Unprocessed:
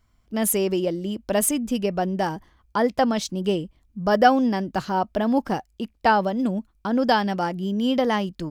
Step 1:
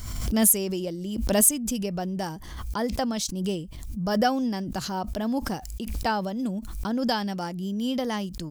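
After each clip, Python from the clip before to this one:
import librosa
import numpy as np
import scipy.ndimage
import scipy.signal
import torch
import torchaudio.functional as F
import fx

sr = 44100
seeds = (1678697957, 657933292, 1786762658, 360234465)

y = fx.bass_treble(x, sr, bass_db=6, treble_db=13)
y = fx.pre_swell(y, sr, db_per_s=41.0)
y = F.gain(torch.from_numpy(y), -8.5).numpy()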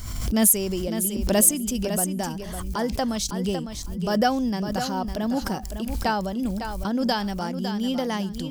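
y = fx.echo_feedback(x, sr, ms=555, feedback_pct=19, wet_db=-8.5)
y = F.gain(torch.from_numpy(y), 1.5).numpy()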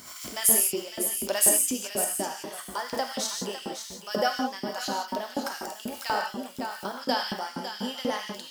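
y = fx.rev_gated(x, sr, seeds[0], gate_ms=200, shape='flat', drr_db=0.0)
y = fx.filter_lfo_highpass(y, sr, shape='saw_up', hz=4.1, low_hz=240.0, high_hz=2700.0, q=0.95)
y = F.gain(torch.from_numpy(y), -3.5).numpy()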